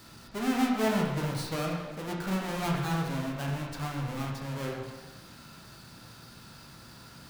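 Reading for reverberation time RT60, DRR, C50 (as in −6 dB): 1.2 s, −2.0 dB, 2.0 dB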